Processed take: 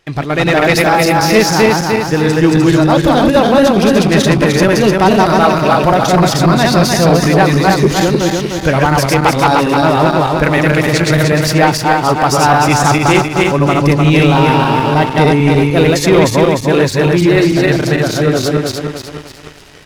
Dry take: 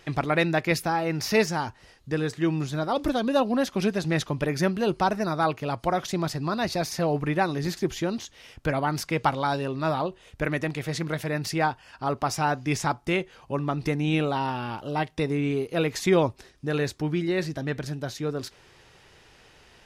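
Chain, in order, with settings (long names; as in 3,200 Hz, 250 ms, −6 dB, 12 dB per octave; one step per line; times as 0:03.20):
feedback delay that plays each chunk backwards 151 ms, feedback 68%, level −1 dB
leveller curve on the samples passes 2
automatic gain control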